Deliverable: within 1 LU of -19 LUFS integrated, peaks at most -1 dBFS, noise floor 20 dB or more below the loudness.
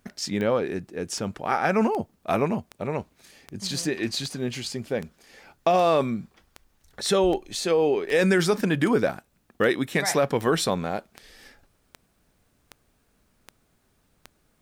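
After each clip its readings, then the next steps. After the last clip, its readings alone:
clicks 19; loudness -25.0 LUFS; peak -8.0 dBFS; loudness target -19.0 LUFS
-> de-click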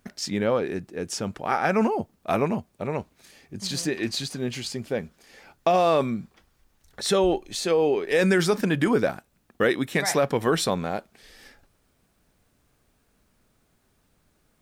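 clicks 0; loudness -25.0 LUFS; peak -8.0 dBFS; loudness target -19.0 LUFS
-> gain +6 dB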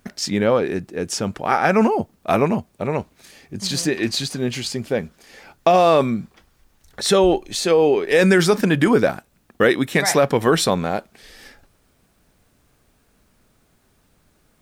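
loudness -19.0 LUFS; peak -2.0 dBFS; noise floor -62 dBFS

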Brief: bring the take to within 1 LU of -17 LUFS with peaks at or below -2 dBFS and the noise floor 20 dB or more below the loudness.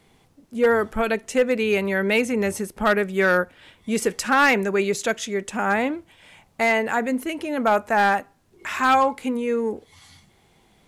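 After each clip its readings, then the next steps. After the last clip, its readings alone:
clipped 0.5%; flat tops at -11.5 dBFS; loudness -22.0 LUFS; peak -11.5 dBFS; loudness target -17.0 LUFS
-> clip repair -11.5 dBFS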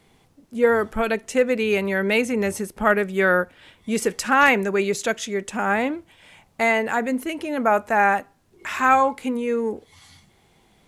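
clipped 0.0%; loudness -21.5 LUFS; peak -3.5 dBFS; loudness target -17.0 LUFS
-> gain +4.5 dB; limiter -2 dBFS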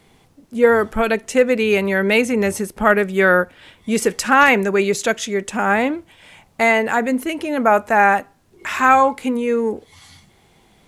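loudness -17.0 LUFS; peak -2.0 dBFS; noise floor -55 dBFS

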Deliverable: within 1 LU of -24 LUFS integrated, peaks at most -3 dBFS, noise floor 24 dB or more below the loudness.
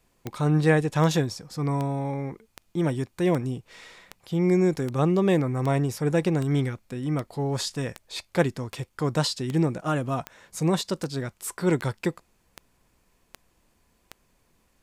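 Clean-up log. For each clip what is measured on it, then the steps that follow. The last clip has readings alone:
clicks 19; loudness -26.0 LUFS; peak -7.5 dBFS; loudness target -24.0 LUFS
-> de-click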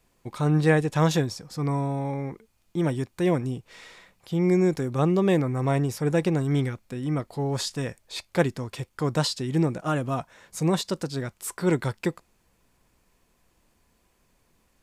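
clicks 0; loudness -26.0 LUFS; peak -7.5 dBFS; loudness target -24.0 LUFS
-> gain +2 dB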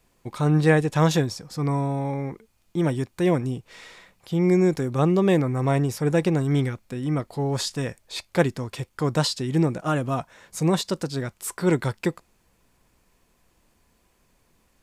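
loudness -24.0 LUFS; peak -5.5 dBFS; noise floor -66 dBFS

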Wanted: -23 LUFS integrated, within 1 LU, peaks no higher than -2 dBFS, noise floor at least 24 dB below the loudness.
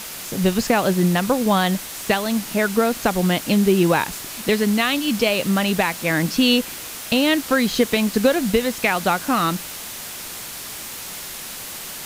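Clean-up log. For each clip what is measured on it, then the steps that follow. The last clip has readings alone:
noise floor -33 dBFS; noise floor target -45 dBFS; loudness -20.5 LUFS; peak -5.0 dBFS; loudness target -23.0 LUFS
-> noise print and reduce 12 dB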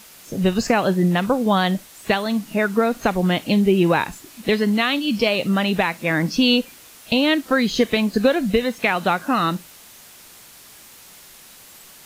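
noise floor -45 dBFS; loudness -20.0 LUFS; peak -5.0 dBFS; loudness target -23.0 LUFS
-> gain -3 dB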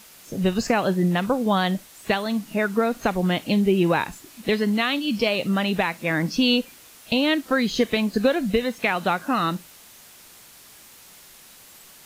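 loudness -23.0 LUFS; peak -8.0 dBFS; noise floor -48 dBFS

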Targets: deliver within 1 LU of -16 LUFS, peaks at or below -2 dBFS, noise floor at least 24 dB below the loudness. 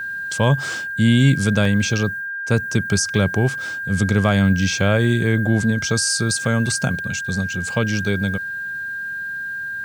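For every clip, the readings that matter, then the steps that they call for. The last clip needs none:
dropouts 2; longest dropout 3.2 ms; steady tone 1600 Hz; tone level -25 dBFS; loudness -19.5 LUFS; peak -3.0 dBFS; loudness target -16.0 LUFS
-> interpolate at 1.65/6.45, 3.2 ms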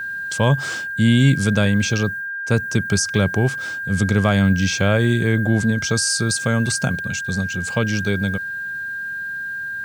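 dropouts 0; steady tone 1600 Hz; tone level -25 dBFS
-> notch 1600 Hz, Q 30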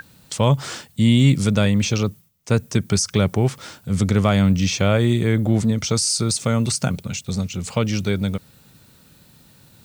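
steady tone none; loudness -20.0 LUFS; peak -3.5 dBFS; loudness target -16.0 LUFS
-> gain +4 dB; limiter -2 dBFS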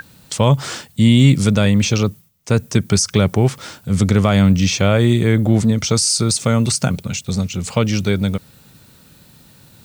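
loudness -16.5 LUFS; peak -2.0 dBFS; noise floor -48 dBFS

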